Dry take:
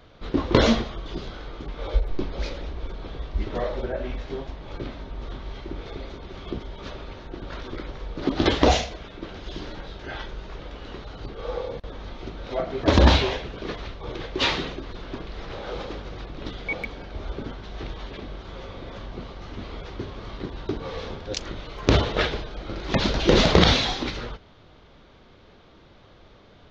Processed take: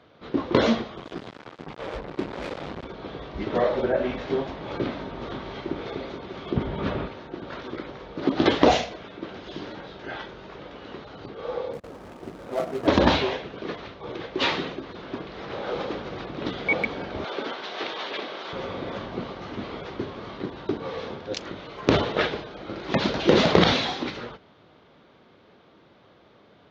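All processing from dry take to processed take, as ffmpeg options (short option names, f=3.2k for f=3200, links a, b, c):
-filter_complex "[0:a]asettb=1/sr,asplit=3[a][b][c];[a]atrim=end=0.974[d];[b]atrim=start=0.97:end=2.85,asetpts=PTS-STARTPTS,afade=t=in:d=0.004:c=qsin,afade=t=out:st=1.876:d=0.004:c=qsin,acrossover=split=3000[e][f];[f]acompressor=threshold=-51dB:ratio=4:attack=1:release=60[g];[e][g]amix=inputs=2:normalize=0,acrusher=bits=4:mix=0:aa=0.5[h];[c]atrim=start=2.846[i];[d][h]acrossfade=d=0.004:c1=hsin:c2=qsin[j];[j][i]acrossfade=d=0.004:c1=qsin:c2=hsin,asettb=1/sr,asplit=3[k][l][m];[k]atrim=end=6.564[n];[l]atrim=start=6.56:end=7.08,asetpts=PTS-STARTPTS,afade=t=in:d=0.004:c=qsin,afade=t=out:st=0.516:d=0.004:c=qsin,bass=f=250:g=9,treble=f=4k:g=-11,acontrast=61[o];[m]atrim=start=7.076[p];[n][o]acrossfade=d=0.004:c1=hsin:c2=qsin[q];[q][p]acrossfade=d=0.004:c1=qsin:c2=hsin,asettb=1/sr,asplit=3[r][s][t];[r]atrim=end=11.734[u];[s]atrim=start=11.73:end=12.87,asetpts=PTS-STARTPTS,afade=t=in:d=0.004:c=qsin,afade=t=out:st=1.136:d=0.004:c=qsin,adynamicsmooth=sensitivity=4:basefreq=1.1k,acrusher=bits=3:mode=log:mix=0:aa=0.000001[v];[t]atrim=start=12.866[w];[u][v]acrossfade=d=0.004:c1=hsin:c2=qsin[x];[x][w]acrossfade=d=0.004:c1=qsin:c2=hsin,asettb=1/sr,asplit=3[y][z][aa];[y]atrim=end=17.244[ab];[z]atrim=start=17.24:end=18.53,asetpts=PTS-STARTPTS,afade=t=in:d=0.004:c=qsin,afade=t=out:st=1.286:d=0.004:c=qsin,highpass=440,lowpass=4.9k,highshelf=f=3.3k:g=11.5[ac];[aa]atrim=start=18.526[ad];[ab][ac]acrossfade=d=0.004:c1=hsin:c2=qsin[ae];[ae][ad]acrossfade=d=0.004:c1=qsin:c2=hsin,highpass=150,aemphasis=mode=reproduction:type=50kf,dynaudnorm=f=270:g=21:m=11dB,volume=-1dB"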